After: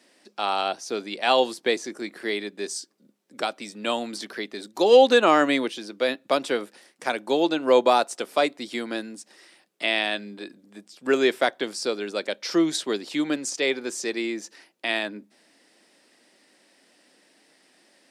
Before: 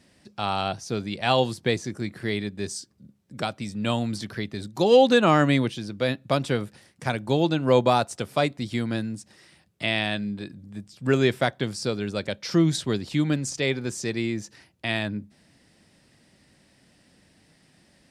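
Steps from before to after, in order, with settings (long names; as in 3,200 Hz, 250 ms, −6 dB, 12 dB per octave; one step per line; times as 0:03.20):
high-pass filter 290 Hz 24 dB per octave
level +2 dB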